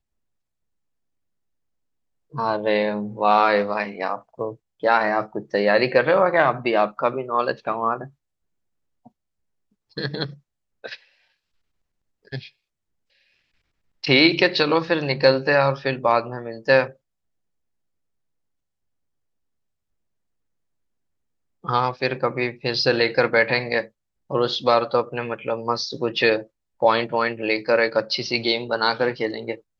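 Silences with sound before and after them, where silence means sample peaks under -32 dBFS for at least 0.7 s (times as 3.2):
8.05–9.97
10.95–12.32
12.46–14.04
16.89–21.65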